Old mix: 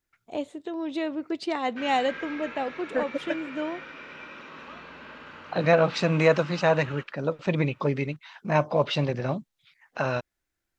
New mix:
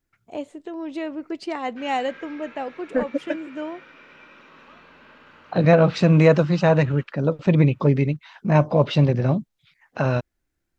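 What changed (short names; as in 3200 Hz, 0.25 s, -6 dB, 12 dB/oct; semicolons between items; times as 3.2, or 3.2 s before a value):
first voice: add bell 3700 Hz -9 dB 0.28 oct; second voice: add low shelf 390 Hz +12 dB; background -5.5 dB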